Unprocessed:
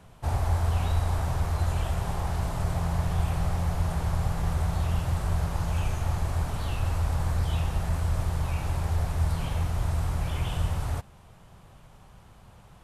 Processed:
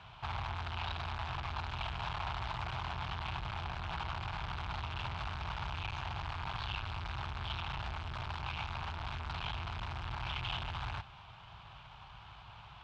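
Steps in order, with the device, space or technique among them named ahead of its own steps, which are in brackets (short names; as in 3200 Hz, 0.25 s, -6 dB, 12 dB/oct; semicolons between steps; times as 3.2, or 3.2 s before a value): scooped metal amplifier (tube stage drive 37 dB, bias 0.45; speaker cabinet 77–3500 Hz, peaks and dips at 79 Hz -8 dB, 180 Hz -5 dB, 330 Hz +7 dB, 510 Hz -10 dB, 900 Hz +4 dB, 1900 Hz -8 dB; passive tone stack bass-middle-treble 10-0-10); gain +15 dB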